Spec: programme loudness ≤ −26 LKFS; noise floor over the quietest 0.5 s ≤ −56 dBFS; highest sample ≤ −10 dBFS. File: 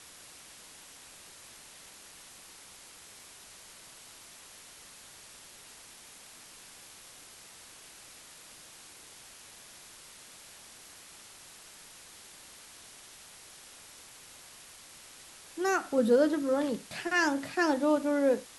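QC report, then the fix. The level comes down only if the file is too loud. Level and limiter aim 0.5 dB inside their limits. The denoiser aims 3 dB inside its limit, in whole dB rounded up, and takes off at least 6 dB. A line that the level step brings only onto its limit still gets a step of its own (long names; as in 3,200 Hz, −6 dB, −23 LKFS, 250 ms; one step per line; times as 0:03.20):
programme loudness −28.5 LKFS: in spec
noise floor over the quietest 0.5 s −52 dBFS: out of spec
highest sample −14.0 dBFS: in spec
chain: broadband denoise 7 dB, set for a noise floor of −52 dBFS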